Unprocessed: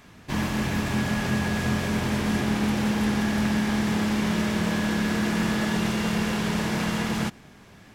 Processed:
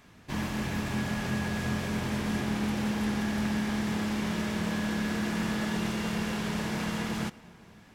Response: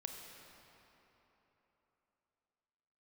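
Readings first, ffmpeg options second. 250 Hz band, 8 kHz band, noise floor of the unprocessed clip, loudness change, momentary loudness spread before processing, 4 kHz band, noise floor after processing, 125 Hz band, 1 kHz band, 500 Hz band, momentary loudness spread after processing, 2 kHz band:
-5.5 dB, -5.5 dB, -50 dBFS, -5.5 dB, 2 LU, -5.5 dB, -55 dBFS, -5.5 dB, -5.5 dB, -6.0 dB, 2 LU, -5.5 dB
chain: -filter_complex "[0:a]asplit=2[s0][s1];[1:a]atrim=start_sample=2205[s2];[s1][s2]afir=irnorm=-1:irlink=0,volume=0.251[s3];[s0][s3]amix=inputs=2:normalize=0,volume=0.447"

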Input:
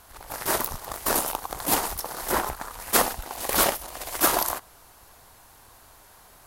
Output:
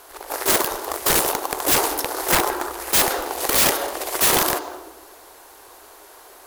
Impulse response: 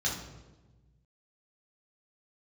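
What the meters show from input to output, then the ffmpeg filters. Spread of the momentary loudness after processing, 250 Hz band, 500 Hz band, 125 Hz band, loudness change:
10 LU, +5.0 dB, +6.0 dB, +4.5 dB, +6.0 dB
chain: -filter_complex "[0:a]lowshelf=f=250:t=q:w=3:g=-13.5,asplit=2[s0][s1];[1:a]atrim=start_sample=2205,lowpass=4400,adelay=148[s2];[s1][s2]afir=irnorm=-1:irlink=0,volume=0.119[s3];[s0][s3]amix=inputs=2:normalize=0,aeval=exprs='(mod(6.31*val(0)+1,2)-1)/6.31':c=same,acrusher=bits=4:mode=log:mix=0:aa=0.000001,volume=2"

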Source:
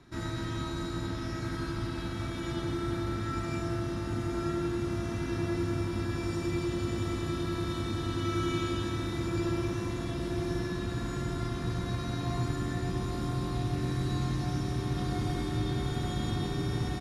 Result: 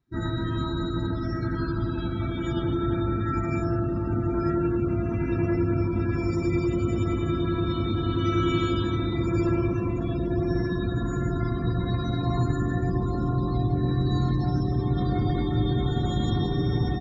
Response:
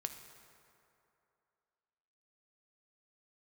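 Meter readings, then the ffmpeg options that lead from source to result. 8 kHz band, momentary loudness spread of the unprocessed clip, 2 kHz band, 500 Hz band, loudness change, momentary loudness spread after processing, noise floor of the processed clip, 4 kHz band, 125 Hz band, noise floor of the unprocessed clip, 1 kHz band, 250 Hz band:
no reading, 4 LU, +2.5 dB, +7.0 dB, +6.5 dB, 4 LU, -29 dBFS, +2.0 dB, +7.0 dB, -36 dBFS, +5.5 dB, +7.0 dB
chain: -af "afftdn=nr=31:nf=-39,volume=2.24"

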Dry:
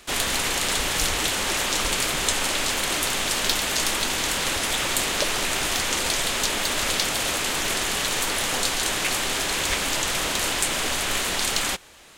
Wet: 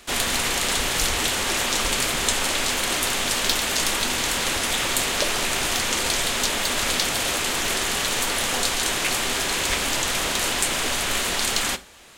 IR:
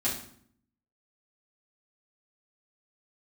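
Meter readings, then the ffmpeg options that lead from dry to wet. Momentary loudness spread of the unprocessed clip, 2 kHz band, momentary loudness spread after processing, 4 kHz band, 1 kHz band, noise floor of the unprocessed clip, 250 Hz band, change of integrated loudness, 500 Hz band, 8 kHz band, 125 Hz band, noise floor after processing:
1 LU, +1.0 dB, 1 LU, +1.0 dB, +1.0 dB, -27 dBFS, +1.5 dB, +1.0 dB, +1.0 dB, +1.0 dB, +1.0 dB, -26 dBFS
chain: -filter_complex "[0:a]asplit=2[s0][s1];[1:a]atrim=start_sample=2205,atrim=end_sample=4410[s2];[s1][s2]afir=irnorm=-1:irlink=0,volume=0.119[s3];[s0][s3]amix=inputs=2:normalize=0"

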